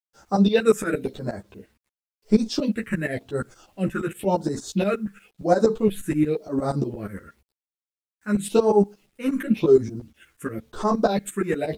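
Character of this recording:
phaser sweep stages 4, 0.94 Hz, lowest notch 690–2,800 Hz
tremolo saw up 8.5 Hz, depth 90%
a quantiser's noise floor 12 bits, dither none
a shimmering, thickened sound

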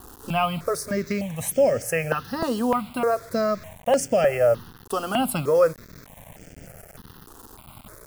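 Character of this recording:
a quantiser's noise floor 8 bits, dither none
notches that jump at a steady rate 3.3 Hz 600–3,900 Hz

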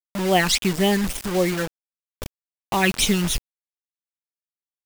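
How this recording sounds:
phaser sweep stages 12, 3.7 Hz, lowest notch 620–1,600 Hz
sample-and-hold tremolo 2.6 Hz
a quantiser's noise floor 6 bits, dither none

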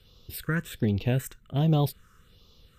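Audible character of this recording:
phaser sweep stages 4, 1.3 Hz, lowest notch 680–1,600 Hz
MP2

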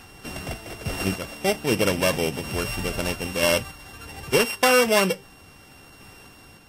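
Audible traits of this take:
a buzz of ramps at a fixed pitch in blocks of 16 samples
sample-and-hold tremolo
Ogg Vorbis

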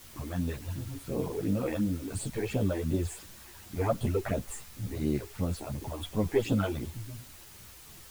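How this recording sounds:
phaser sweep stages 8, 2.8 Hz, lowest notch 160–2,000 Hz
a quantiser's noise floor 8 bits, dither triangular
a shimmering, thickened sound

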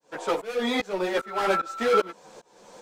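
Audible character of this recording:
tremolo saw up 2.5 Hz, depth 100%
a shimmering, thickened sound

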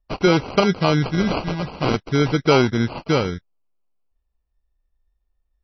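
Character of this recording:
phaser sweep stages 2, 0.47 Hz, lowest notch 400–4,200 Hz
aliases and images of a low sample rate 1,800 Hz, jitter 0%
MP3

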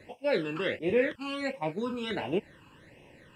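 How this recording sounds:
phaser sweep stages 12, 1.4 Hz, lowest notch 630–1,400 Hz

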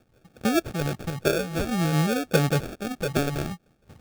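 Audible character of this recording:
a quantiser's noise floor 10 bits, dither triangular
phaser sweep stages 12, 0.55 Hz, lowest notch 380–1,000 Hz
aliases and images of a low sample rate 1,000 Hz, jitter 0%
amplitude modulation by smooth noise

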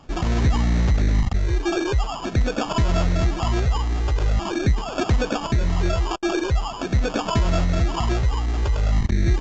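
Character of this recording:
phaser sweep stages 12, 0.44 Hz, lowest notch 180–2,700 Hz
aliases and images of a low sample rate 2,000 Hz, jitter 0%
mu-law

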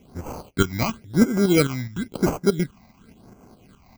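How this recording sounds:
tremolo saw up 4.8 Hz, depth 60%
aliases and images of a low sample rate 1,800 Hz, jitter 0%
phaser sweep stages 8, 0.96 Hz, lowest notch 410–3,800 Hz

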